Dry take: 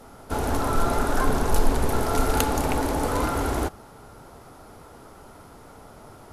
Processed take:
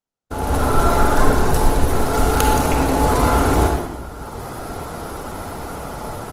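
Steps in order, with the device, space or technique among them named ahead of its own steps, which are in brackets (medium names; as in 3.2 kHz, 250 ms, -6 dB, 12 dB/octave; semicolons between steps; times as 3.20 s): speakerphone in a meeting room (reverberation RT60 0.95 s, pre-delay 41 ms, DRR 2 dB; speakerphone echo 120 ms, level -11 dB; level rider gain up to 15.5 dB; gate -35 dBFS, range -46 dB; trim -1 dB; Opus 20 kbps 48 kHz)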